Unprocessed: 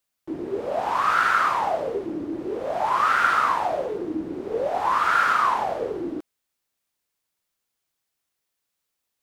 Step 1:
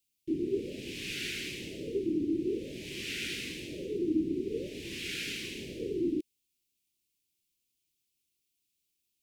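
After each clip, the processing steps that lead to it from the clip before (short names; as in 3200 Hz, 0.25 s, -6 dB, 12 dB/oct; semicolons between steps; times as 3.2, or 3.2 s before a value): elliptic band-stop 370–2500 Hz, stop band 50 dB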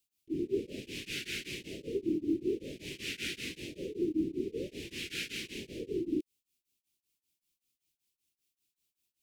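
short-mantissa float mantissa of 6-bit; beating tremolo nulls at 5.2 Hz; gain +1 dB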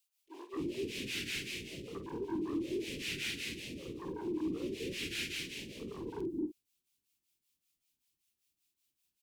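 soft clip -30.5 dBFS, distortion -12 dB; doubler 48 ms -11 dB; bands offset in time highs, lows 0.26 s, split 490 Hz; gain +1 dB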